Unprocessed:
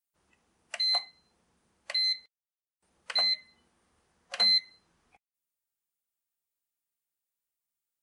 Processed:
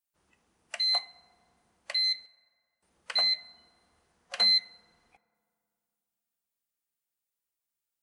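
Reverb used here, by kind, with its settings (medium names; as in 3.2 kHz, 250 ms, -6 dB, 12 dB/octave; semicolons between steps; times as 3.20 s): FDN reverb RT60 2.5 s, low-frequency decay 1.3×, high-frequency decay 0.4×, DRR 19 dB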